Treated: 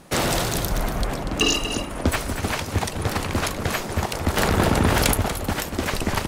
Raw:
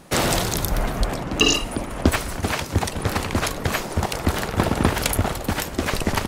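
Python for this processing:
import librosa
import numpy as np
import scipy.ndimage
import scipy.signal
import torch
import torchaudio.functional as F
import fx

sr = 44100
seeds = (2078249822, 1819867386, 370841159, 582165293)

p1 = fx.fold_sine(x, sr, drive_db=8, ceiling_db=-2.5)
p2 = x + F.gain(torch.from_numpy(p1), -10.0).numpy()
p3 = p2 + 10.0 ** (-9.0 / 20.0) * np.pad(p2, (int(239 * sr / 1000.0), 0))[:len(p2)]
p4 = fx.env_flatten(p3, sr, amount_pct=70, at=(4.37, 5.14))
y = F.gain(torch.from_numpy(p4), -8.0).numpy()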